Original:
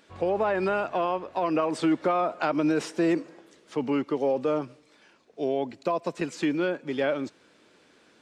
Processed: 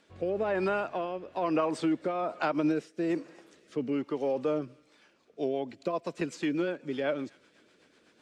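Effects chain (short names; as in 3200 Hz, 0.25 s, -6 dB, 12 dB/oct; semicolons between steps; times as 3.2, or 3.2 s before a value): thin delay 0.27 s, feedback 53%, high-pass 1600 Hz, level -23 dB; rotary speaker horn 1.1 Hz, later 8 Hz, at 4.71; 2.48–3.1 upward expander 1.5:1, over -46 dBFS; gain -2 dB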